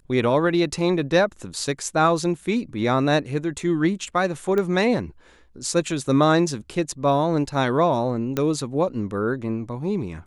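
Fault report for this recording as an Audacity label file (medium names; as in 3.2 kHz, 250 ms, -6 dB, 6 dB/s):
4.580000	4.580000	pop -14 dBFS
8.370000	8.370000	pop -10 dBFS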